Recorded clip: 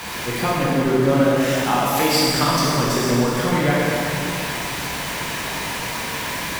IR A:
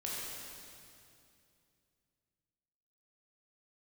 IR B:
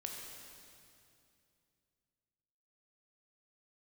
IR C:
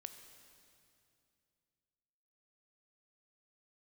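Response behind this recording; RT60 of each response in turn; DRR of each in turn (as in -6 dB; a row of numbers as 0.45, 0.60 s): A; 2.5, 2.5, 2.6 s; -6.0, 0.0, 7.5 dB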